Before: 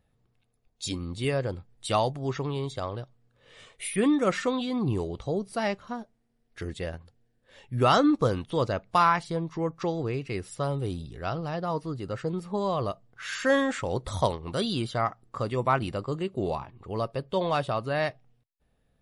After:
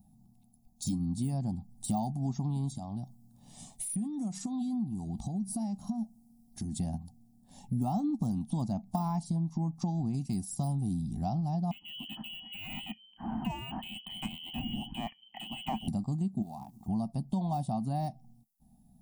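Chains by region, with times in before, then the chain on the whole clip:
2.74–6.75 s: treble shelf 5.9 kHz +4.5 dB + compression, threshold -39 dBFS
10.14–10.73 s: gate -44 dBFS, range -7 dB + peaking EQ 9.1 kHz +8.5 dB 2.5 oct
11.71–15.88 s: self-modulated delay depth 0.25 ms + bass shelf 250 Hz +10 dB + frequency inversion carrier 3.1 kHz
16.42–16.88 s: companding laws mixed up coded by A + bass shelf 170 Hz -10.5 dB + compression 3:1, threshold -37 dBFS
whole clip: de-esser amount 95%; FFT filter 110 Hz 0 dB, 220 Hz +15 dB, 490 Hz -26 dB, 760 Hz +6 dB, 1.4 kHz -27 dB, 2.9 kHz -18 dB, 5.2 kHz -1 dB, 12 kHz +10 dB; compression 4:1, threshold -36 dBFS; trim +5 dB

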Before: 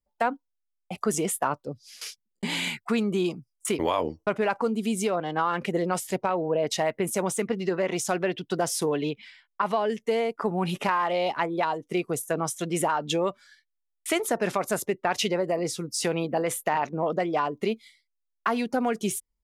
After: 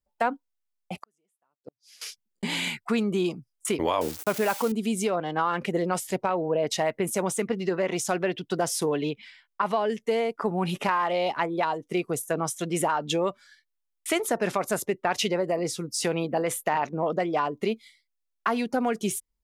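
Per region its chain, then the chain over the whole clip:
0.98–2.08 s: high-pass 210 Hz 6 dB/octave + inverted gate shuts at -25 dBFS, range -42 dB + upward expansion, over -49 dBFS
4.01–4.72 s: zero-crossing glitches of -23.5 dBFS + high-pass 56 Hz
whole clip: none

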